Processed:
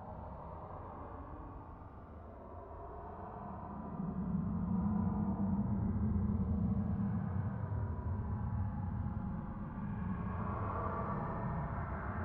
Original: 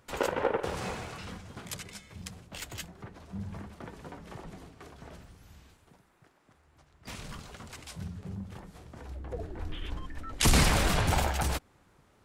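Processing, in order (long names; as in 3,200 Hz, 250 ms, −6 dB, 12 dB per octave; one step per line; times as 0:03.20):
auto-filter low-pass saw up 0.45 Hz 460–2,400 Hz
extreme stretch with random phases 31×, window 0.05 s, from 0:03.20
level +1 dB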